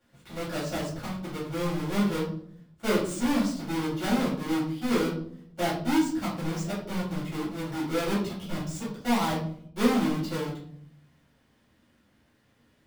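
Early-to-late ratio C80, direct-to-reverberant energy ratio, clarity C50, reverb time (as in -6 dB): 9.0 dB, -10.5 dB, 5.0 dB, 0.60 s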